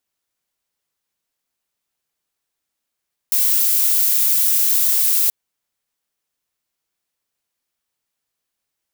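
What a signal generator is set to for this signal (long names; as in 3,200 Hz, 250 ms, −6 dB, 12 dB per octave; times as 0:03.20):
noise violet, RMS −16 dBFS 1.98 s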